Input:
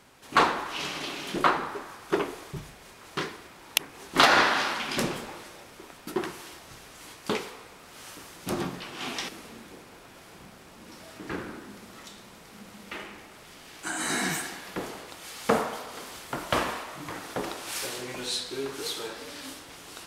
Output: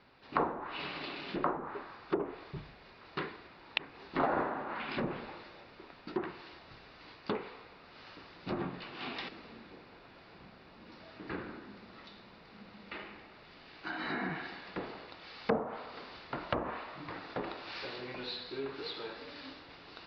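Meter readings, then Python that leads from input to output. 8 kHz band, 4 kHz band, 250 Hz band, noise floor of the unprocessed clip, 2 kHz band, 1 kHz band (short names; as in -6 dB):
under -35 dB, -12.5 dB, -5.5 dB, -50 dBFS, -11.5 dB, -9.5 dB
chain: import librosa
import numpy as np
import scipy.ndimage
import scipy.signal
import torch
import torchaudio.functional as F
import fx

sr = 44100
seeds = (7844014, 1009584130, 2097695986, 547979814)

y = scipy.signal.sosfilt(scipy.signal.butter(12, 4900.0, 'lowpass', fs=sr, output='sos'), x)
y = fx.env_lowpass_down(y, sr, base_hz=780.0, full_db=-22.5)
y = fx.notch(y, sr, hz=3200.0, q=12.0)
y = F.gain(torch.from_numpy(y), -5.5).numpy()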